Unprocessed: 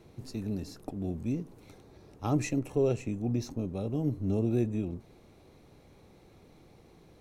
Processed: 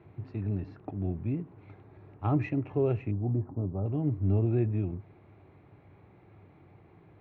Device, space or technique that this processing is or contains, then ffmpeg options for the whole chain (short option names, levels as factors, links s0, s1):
bass cabinet: -filter_complex "[0:a]highpass=86,equalizer=f=100:t=q:w=4:g=9,equalizer=f=230:t=q:w=4:g=-7,equalizer=f=500:t=q:w=4:g=-8,lowpass=f=2400:w=0.5412,lowpass=f=2400:w=1.3066,asettb=1/sr,asplit=3[s0][s1][s2];[s0]atrim=end=3.114[s3];[s1]atrim=start=3.11:end=3.86,asetpts=PTS-STARTPTS,afade=t=in:d=0.004:c=qsin,afade=t=out:st=0.746:d=0.004:c=qsin,lowpass=f=1200:w=0.5412,lowpass=f=1200:w=1.3066[s4];[s2]atrim=start=3.856[s5];[s3][s4]acrossfade=d=0.004:c1=hsin:c2=qsin[s6];[s6][s5]acrossfade=d=0.004:c1=qsin:c2=hsin,volume=1.26"